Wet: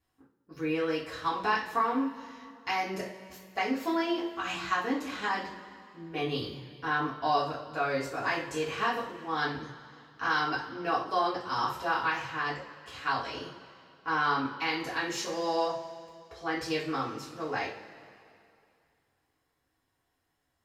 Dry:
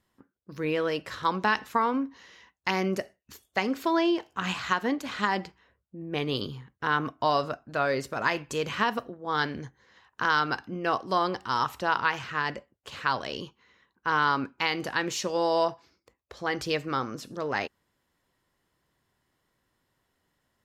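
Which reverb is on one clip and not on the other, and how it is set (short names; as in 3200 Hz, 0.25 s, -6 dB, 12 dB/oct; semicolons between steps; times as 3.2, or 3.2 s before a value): two-slope reverb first 0.37 s, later 2.5 s, from -18 dB, DRR -8.5 dB; gain -11.5 dB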